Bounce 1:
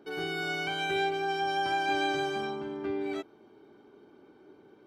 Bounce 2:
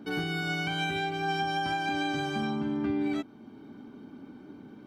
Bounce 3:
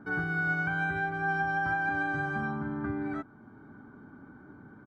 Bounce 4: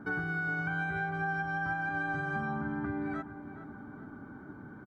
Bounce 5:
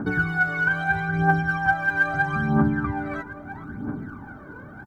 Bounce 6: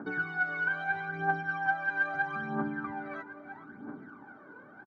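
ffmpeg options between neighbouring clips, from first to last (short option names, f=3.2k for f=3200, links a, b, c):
-af "lowshelf=f=310:t=q:w=3:g=6.5,alimiter=level_in=3dB:limit=-24dB:level=0:latency=1:release=459,volume=-3dB,volume=5.5dB"
-af "firequalizer=gain_entry='entry(110,0);entry(230,-10);entry(470,-9);entry(1500,3);entry(2700,-24);entry(6500,-21)':delay=0.05:min_phase=1,volume=4.5dB"
-filter_complex "[0:a]acompressor=threshold=-34dB:ratio=6,asplit=2[a][b];[b]adelay=420,lowpass=f=2.1k:p=1,volume=-11dB,asplit=2[c][d];[d]adelay=420,lowpass=f=2.1k:p=1,volume=0.52,asplit=2[e][f];[f]adelay=420,lowpass=f=2.1k:p=1,volume=0.52,asplit=2[g][h];[h]adelay=420,lowpass=f=2.1k:p=1,volume=0.52,asplit=2[i][j];[j]adelay=420,lowpass=f=2.1k:p=1,volume=0.52,asplit=2[k][l];[l]adelay=420,lowpass=f=2.1k:p=1,volume=0.52[m];[a][c][e][g][i][k][m]amix=inputs=7:normalize=0,volume=3dB"
-af "aphaser=in_gain=1:out_gain=1:delay=2.1:decay=0.72:speed=0.77:type=triangular,volume=7.5dB"
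-af "highpass=290,lowpass=4.4k,aecho=1:1:328:0.119,volume=-8dB"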